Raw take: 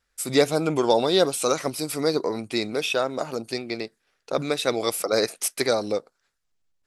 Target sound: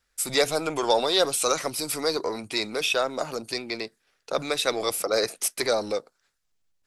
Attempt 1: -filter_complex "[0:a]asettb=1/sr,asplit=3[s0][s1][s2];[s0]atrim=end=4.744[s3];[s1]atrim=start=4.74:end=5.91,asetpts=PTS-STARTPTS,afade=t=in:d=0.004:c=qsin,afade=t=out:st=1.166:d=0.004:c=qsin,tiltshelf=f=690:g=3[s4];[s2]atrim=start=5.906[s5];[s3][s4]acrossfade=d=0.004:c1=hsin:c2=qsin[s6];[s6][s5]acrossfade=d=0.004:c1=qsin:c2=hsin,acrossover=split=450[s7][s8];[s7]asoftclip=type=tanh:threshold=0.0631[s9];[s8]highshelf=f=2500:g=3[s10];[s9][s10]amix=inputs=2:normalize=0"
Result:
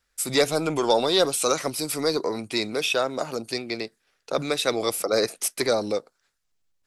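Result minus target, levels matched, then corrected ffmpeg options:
saturation: distortion -8 dB
-filter_complex "[0:a]asettb=1/sr,asplit=3[s0][s1][s2];[s0]atrim=end=4.744[s3];[s1]atrim=start=4.74:end=5.91,asetpts=PTS-STARTPTS,afade=t=in:d=0.004:c=qsin,afade=t=out:st=1.166:d=0.004:c=qsin,tiltshelf=f=690:g=3[s4];[s2]atrim=start=5.906[s5];[s3][s4]acrossfade=d=0.004:c1=hsin:c2=qsin[s6];[s6][s5]acrossfade=d=0.004:c1=qsin:c2=hsin,acrossover=split=450[s7][s8];[s7]asoftclip=type=tanh:threshold=0.0178[s9];[s8]highshelf=f=2500:g=3[s10];[s9][s10]amix=inputs=2:normalize=0"

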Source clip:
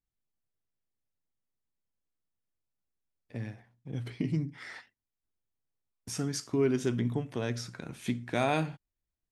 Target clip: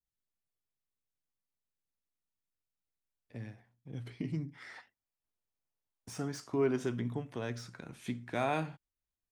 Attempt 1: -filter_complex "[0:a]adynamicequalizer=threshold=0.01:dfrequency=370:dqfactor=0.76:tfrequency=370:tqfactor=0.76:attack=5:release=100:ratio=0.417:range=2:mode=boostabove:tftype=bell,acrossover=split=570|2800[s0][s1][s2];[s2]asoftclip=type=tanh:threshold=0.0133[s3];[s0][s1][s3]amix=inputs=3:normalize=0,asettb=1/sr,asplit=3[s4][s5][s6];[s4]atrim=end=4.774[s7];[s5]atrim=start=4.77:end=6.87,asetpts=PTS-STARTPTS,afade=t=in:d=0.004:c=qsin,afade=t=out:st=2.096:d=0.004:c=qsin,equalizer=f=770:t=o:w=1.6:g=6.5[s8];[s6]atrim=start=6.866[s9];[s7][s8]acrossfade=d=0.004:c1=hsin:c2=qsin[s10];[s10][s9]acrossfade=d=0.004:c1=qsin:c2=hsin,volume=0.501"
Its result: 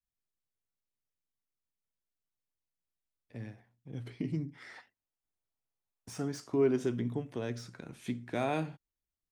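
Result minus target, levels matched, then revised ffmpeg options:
1 kHz band -3.5 dB
-filter_complex "[0:a]adynamicequalizer=threshold=0.01:dfrequency=1100:dqfactor=0.76:tfrequency=1100:tqfactor=0.76:attack=5:release=100:ratio=0.417:range=2:mode=boostabove:tftype=bell,acrossover=split=570|2800[s0][s1][s2];[s2]asoftclip=type=tanh:threshold=0.0133[s3];[s0][s1][s3]amix=inputs=3:normalize=0,asettb=1/sr,asplit=3[s4][s5][s6];[s4]atrim=end=4.774[s7];[s5]atrim=start=4.77:end=6.87,asetpts=PTS-STARTPTS,afade=t=in:d=0.004:c=qsin,afade=t=out:st=2.096:d=0.004:c=qsin,equalizer=f=770:t=o:w=1.6:g=6.5[s8];[s6]atrim=start=6.866[s9];[s7][s8]acrossfade=d=0.004:c1=hsin:c2=qsin[s10];[s10][s9]acrossfade=d=0.004:c1=qsin:c2=hsin,volume=0.501"

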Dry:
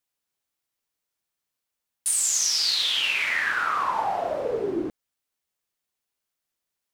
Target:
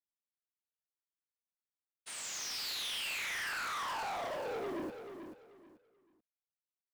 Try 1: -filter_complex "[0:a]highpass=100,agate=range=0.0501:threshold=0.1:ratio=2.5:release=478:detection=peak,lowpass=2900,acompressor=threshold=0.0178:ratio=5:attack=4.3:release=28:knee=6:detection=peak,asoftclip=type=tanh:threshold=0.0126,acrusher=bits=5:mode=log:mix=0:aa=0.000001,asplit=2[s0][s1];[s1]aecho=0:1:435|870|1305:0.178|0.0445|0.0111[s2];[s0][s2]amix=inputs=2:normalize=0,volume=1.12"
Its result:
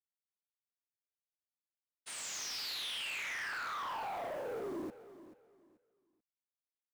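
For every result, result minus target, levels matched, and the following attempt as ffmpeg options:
compression: peak gain reduction +11 dB; echo-to-direct -6.5 dB
-filter_complex "[0:a]highpass=100,agate=range=0.0501:threshold=0.1:ratio=2.5:release=478:detection=peak,lowpass=2900,asoftclip=type=tanh:threshold=0.0126,acrusher=bits=5:mode=log:mix=0:aa=0.000001,asplit=2[s0][s1];[s1]aecho=0:1:435|870|1305:0.178|0.0445|0.0111[s2];[s0][s2]amix=inputs=2:normalize=0,volume=1.12"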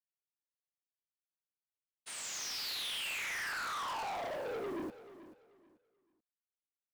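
echo-to-direct -6.5 dB
-filter_complex "[0:a]highpass=100,agate=range=0.0501:threshold=0.1:ratio=2.5:release=478:detection=peak,lowpass=2900,asoftclip=type=tanh:threshold=0.0126,acrusher=bits=5:mode=log:mix=0:aa=0.000001,asplit=2[s0][s1];[s1]aecho=0:1:435|870|1305:0.376|0.094|0.0235[s2];[s0][s2]amix=inputs=2:normalize=0,volume=1.12"

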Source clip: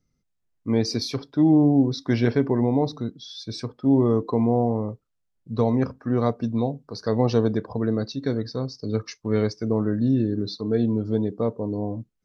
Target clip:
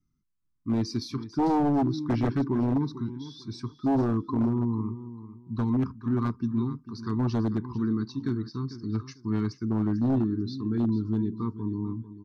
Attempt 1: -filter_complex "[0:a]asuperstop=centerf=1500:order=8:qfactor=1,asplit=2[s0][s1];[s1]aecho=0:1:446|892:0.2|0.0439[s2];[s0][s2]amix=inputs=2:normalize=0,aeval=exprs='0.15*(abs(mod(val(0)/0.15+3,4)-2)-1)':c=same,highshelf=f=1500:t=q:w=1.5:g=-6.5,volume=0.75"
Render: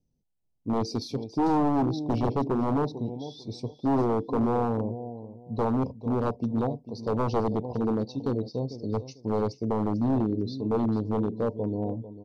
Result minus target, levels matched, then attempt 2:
500 Hz band +6.0 dB
-filter_complex "[0:a]asuperstop=centerf=600:order=8:qfactor=1,asplit=2[s0][s1];[s1]aecho=0:1:446|892:0.2|0.0439[s2];[s0][s2]amix=inputs=2:normalize=0,aeval=exprs='0.15*(abs(mod(val(0)/0.15+3,4)-2)-1)':c=same,highshelf=f=1500:t=q:w=1.5:g=-6.5,volume=0.75"

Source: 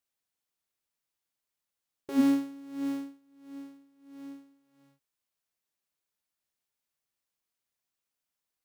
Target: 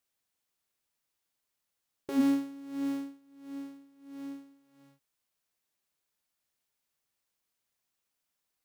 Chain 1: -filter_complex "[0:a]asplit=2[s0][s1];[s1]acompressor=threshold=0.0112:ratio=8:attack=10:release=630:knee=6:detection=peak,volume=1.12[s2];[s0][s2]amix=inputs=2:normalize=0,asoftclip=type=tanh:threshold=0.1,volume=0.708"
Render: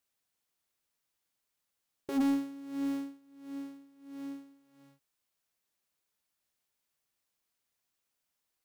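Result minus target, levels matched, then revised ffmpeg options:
saturation: distortion +18 dB
-filter_complex "[0:a]asplit=2[s0][s1];[s1]acompressor=threshold=0.0112:ratio=8:attack=10:release=630:knee=6:detection=peak,volume=1.12[s2];[s0][s2]amix=inputs=2:normalize=0,asoftclip=type=tanh:threshold=0.355,volume=0.708"

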